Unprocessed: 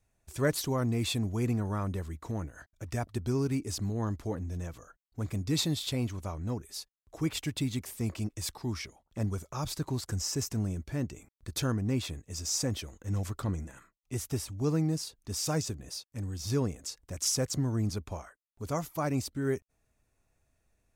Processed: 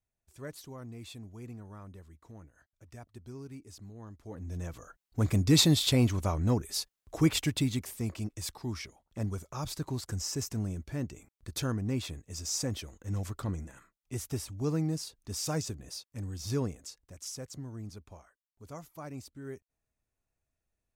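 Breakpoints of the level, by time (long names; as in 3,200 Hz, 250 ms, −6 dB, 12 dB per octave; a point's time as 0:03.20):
0:04.18 −15 dB
0:04.49 −2 dB
0:05.23 +7 dB
0:07.17 +7 dB
0:08.11 −2 dB
0:16.64 −2 dB
0:17.23 −12 dB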